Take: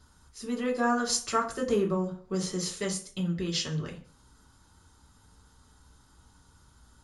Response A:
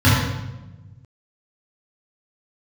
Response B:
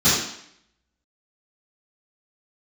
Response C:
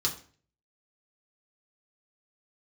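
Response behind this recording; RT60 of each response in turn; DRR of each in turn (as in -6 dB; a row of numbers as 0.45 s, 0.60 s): C; 1.1 s, 0.70 s, 0.45 s; -10.5 dB, -16.0 dB, -3.0 dB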